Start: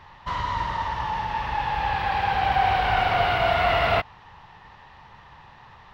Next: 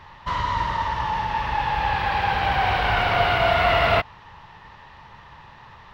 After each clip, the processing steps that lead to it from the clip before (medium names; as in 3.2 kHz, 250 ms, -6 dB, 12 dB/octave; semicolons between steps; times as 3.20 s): band-stop 760 Hz, Q 12; trim +3 dB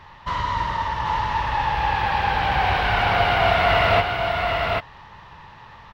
delay 787 ms -4 dB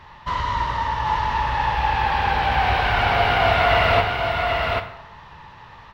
plate-style reverb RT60 0.82 s, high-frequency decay 0.75×, DRR 7.5 dB